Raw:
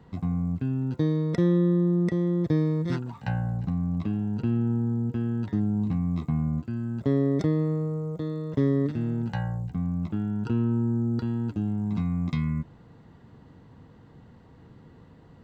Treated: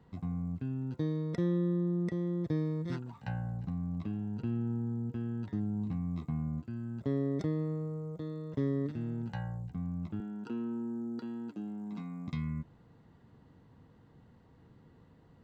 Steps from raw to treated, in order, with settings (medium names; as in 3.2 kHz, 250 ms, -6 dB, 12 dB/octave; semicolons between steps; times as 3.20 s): 10.20–12.28 s: high-pass 200 Hz 24 dB/octave; trim -8.5 dB